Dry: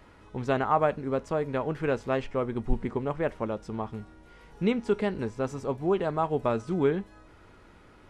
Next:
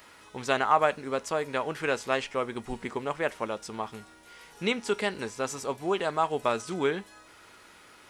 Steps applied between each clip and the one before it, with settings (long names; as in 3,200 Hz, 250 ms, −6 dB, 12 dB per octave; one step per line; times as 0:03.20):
spectral tilt +4 dB per octave
level +2.5 dB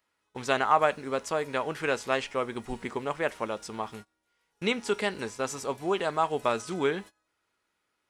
noise gate −42 dBFS, range −25 dB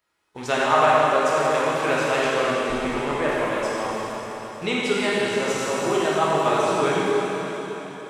dense smooth reverb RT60 4.1 s, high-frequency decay 1×, DRR −7.5 dB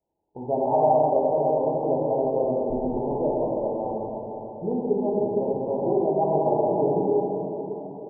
Butterworth low-pass 900 Hz 96 dB per octave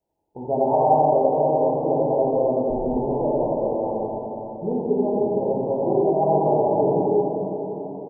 single-tap delay 87 ms −3.5 dB
level +1.5 dB